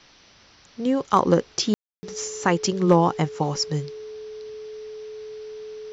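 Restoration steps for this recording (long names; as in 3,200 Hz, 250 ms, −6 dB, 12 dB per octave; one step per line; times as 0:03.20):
clipped peaks rebuilt −6 dBFS
notch filter 430 Hz, Q 30
ambience match 0:01.74–0:02.03
downward expander −46 dBFS, range −21 dB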